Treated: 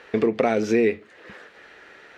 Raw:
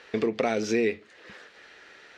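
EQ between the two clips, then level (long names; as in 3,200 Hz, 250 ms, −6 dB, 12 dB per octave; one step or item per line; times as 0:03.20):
parametric band 5,100 Hz −8.5 dB 1.8 octaves
+5.5 dB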